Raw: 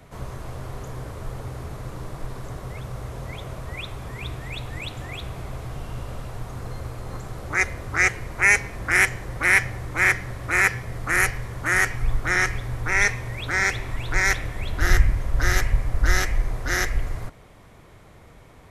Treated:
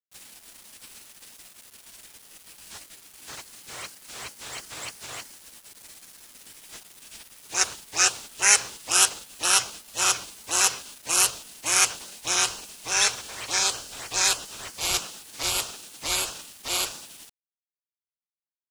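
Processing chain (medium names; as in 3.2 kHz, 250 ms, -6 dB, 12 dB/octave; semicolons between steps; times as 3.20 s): frequency weighting ITU-R 468; spectral gate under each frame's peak -15 dB weak; bit crusher 8-bit; trim +2 dB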